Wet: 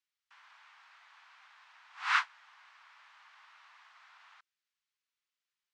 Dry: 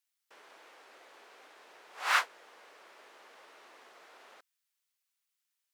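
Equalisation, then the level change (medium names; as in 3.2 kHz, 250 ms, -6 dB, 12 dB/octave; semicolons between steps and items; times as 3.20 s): steep high-pass 930 Hz 36 dB/octave; Bessel low-pass 7.1 kHz; distance through air 80 m; 0.0 dB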